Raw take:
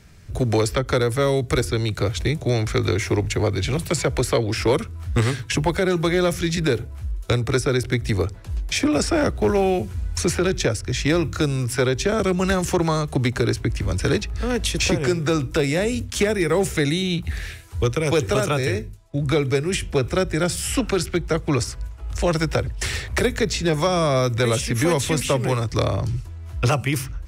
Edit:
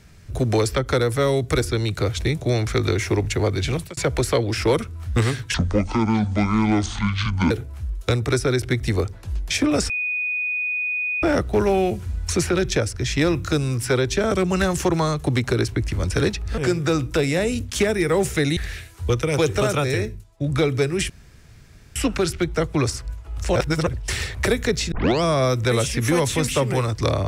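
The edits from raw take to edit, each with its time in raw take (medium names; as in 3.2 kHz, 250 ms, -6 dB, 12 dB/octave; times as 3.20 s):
3.72–3.97 s: fade out
5.54–6.72 s: speed 60%
9.11 s: add tone 2.48 kHz -21.5 dBFS 1.33 s
14.46–14.98 s: delete
16.97–17.30 s: delete
19.83–20.69 s: room tone
22.29–22.60 s: reverse
23.65 s: tape start 0.31 s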